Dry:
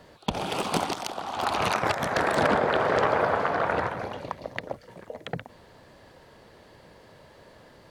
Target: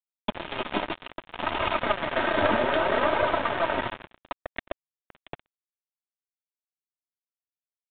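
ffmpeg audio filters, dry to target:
-af "flanger=delay=1.7:depth=8.5:regen=26:speed=0.62:shape=triangular,aecho=1:1:3.2:0.69,aeval=exprs='(tanh(5.62*val(0)+0.65)-tanh(0.65))/5.62':c=same,aresample=16000,acrusher=bits=4:mix=0:aa=0.5,aresample=44100,aresample=8000,aresample=44100,volume=4.5dB"

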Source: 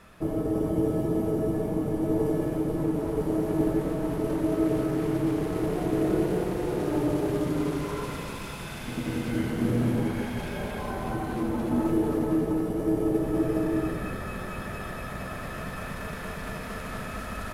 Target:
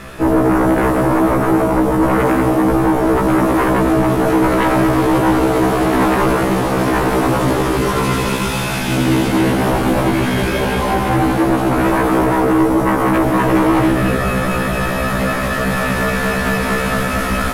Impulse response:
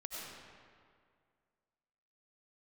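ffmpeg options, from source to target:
-af "bandreject=f=60:t=h:w=6,bandreject=f=120:t=h:w=6,bandreject=f=180:t=h:w=6,bandreject=f=240:t=h:w=6,bandreject=f=300:t=h:w=6,aeval=exprs='0.224*sin(PI/2*5.01*val(0)/0.224)':c=same,afftfilt=real='re*1.73*eq(mod(b,3),0)':imag='im*1.73*eq(mod(b,3),0)':win_size=2048:overlap=0.75,volume=4dB"

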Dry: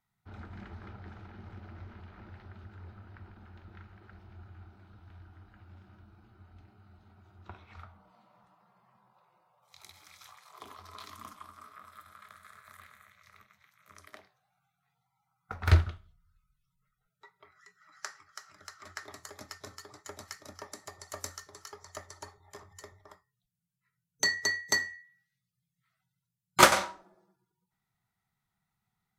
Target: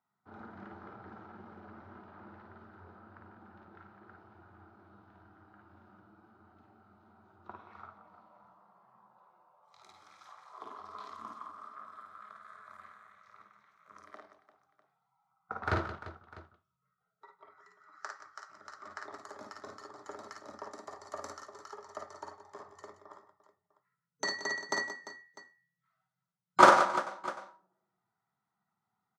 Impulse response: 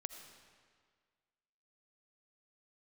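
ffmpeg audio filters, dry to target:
-af "highpass=220,lowpass=6.2k,highshelf=f=1.7k:t=q:w=1.5:g=-8.5,aecho=1:1:45|54|156|176|346|650:0.335|0.631|0.106|0.266|0.2|0.112"

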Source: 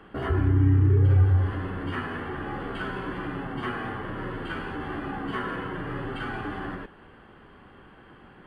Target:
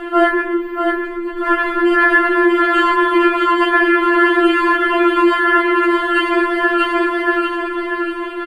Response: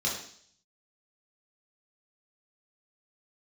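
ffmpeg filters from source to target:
-filter_complex "[0:a]lowshelf=f=120:g=-8,acompressor=threshold=-28dB:ratio=6,aecho=1:1:634|1268|1902|2536|3170:0.562|0.242|0.104|0.0447|0.0192,asplit=2[a][b];[1:a]atrim=start_sample=2205[c];[b][c]afir=irnorm=-1:irlink=0,volume=-25dB[d];[a][d]amix=inputs=2:normalize=0,alimiter=level_in=28.5dB:limit=-1dB:release=50:level=0:latency=1,afftfilt=real='re*4*eq(mod(b,16),0)':imag='im*4*eq(mod(b,16),0)':win_size=2048:overlap=0.75,volume=-2dB"

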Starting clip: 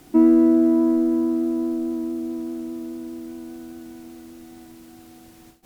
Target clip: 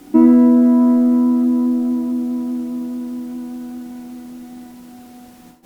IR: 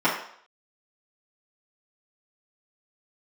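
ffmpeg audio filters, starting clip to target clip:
-filter_complex "[0:a]asplit=2[a][b];[1:a]atrim=start_sample=2205,lowshelf=f=460:g=11[c];[b][c]afir=irnorm=-1:irlink=0,volume=-23dB[d];[a][d]amix=inputs=2:normalize=0,volume=2.5dB"

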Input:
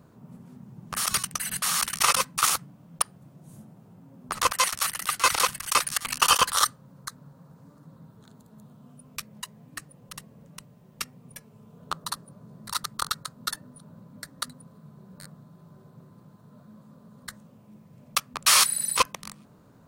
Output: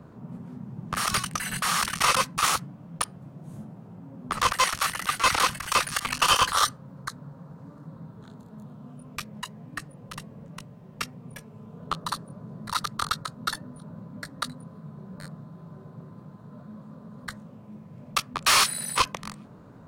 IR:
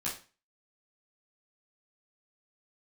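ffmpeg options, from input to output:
-filter_complex "[0:a]acrossover=split=140|2400[a][b][c];[b]asoftclip=type=tanh:threshold=-23.5dB[d];[c]flanger=delay=19.5:depth=3.7:speed=0.29[e];[a][d][e]amix=inputs=3:normalize=0,asoftclip=type=hard:threshold=-16.5dB,highshelf=f=5.5k:g=-11,volume=7dB"

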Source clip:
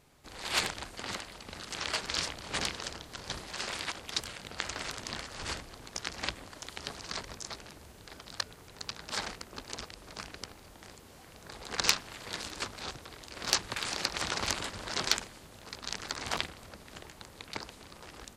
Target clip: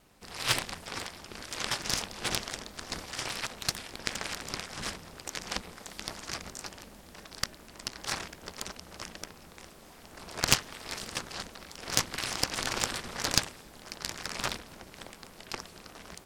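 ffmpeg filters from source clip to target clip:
-af "aeval=exprs='0.631*(cos(1*acos(clip(val(0)/0.631,-1,1)))-cos(1*PI/2))+0.0794*(cos(8*acos(clip(val(0)/0.631,-1,1)))-cos(8*PI/2))':c=same,aeval=exprs='val(0)*sin(2*PI*110*n/s)':c=same,asetrate=49833,aresample=44100,volume=4dB"

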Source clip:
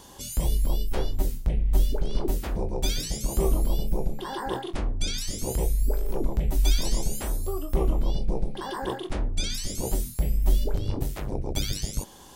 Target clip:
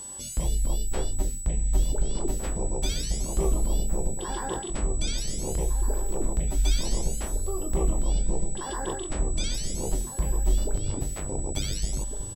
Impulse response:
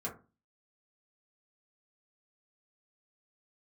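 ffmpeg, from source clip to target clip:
-filter_complex "[0:a]asplit=2[a][b];[b]adelay=1458,volume=-7dB,highshelf=f=4k:g=-32.8[c];[a][c]amix=inputs=2:normalize=0,acrossover=split=9100[d][e];[e]acompressor=threshold=-48dB:ratio=4:attack=1:release=60[f];[d][f]amix=inputs=2:normalize=0,aeval=exprs='val(0)+0.0178*sin(2*PI*7900*n/s)':c=same,volume=-2dB"

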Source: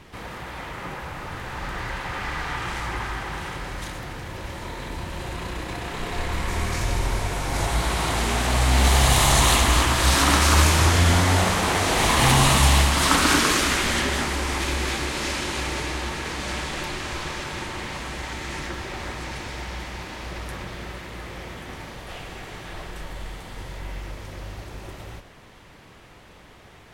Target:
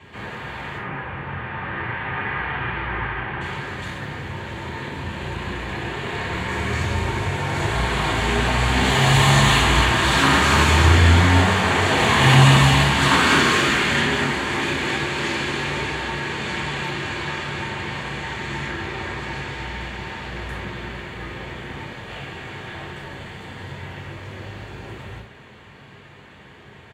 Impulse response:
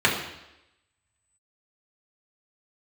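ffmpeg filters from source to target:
-filter_complex "[0:a]asettb=1/sr,asplit=3[a][b][c];[a]atrim=end=0.784[d];[b]atrim=start=0.78:end=3.41,asetpts=PTS-STARTPTS,afade=t=in:d=0.004:c=qsin,afade=t=out:st=2.626:d=0.004:c=qsin,lowpass=f=2.9k:w=0.5412,lowpass=f=2.9k:w=1.3066[e];[c]atrim=start=3.406[f];[d][e]acrossfade=d=0.004:c1=hsin:c2=qsin[g];[g][f]acrossfade=d=0.004:c1=qsin:c2=hsin,aecho=1:1:579|1158|1737:0.0891|0.0392|0.0173[h];[1:a]atrim=start_sample=2205,afade=t=out:st=0.15:d=0.01,atrim=end_sample=7056[i];[h][i]afir=irnorm=-1:irlink=0,volume=-14dB"

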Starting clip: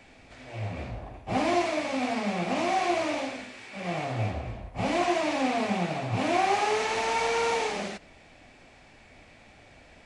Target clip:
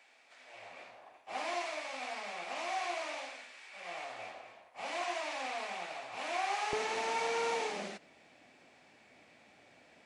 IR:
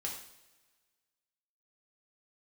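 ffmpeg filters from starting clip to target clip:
-af "asetnsamples=n=441:p=0,asendcmd='6.73 highpass f 190',highpass=770,volume=-7dB"

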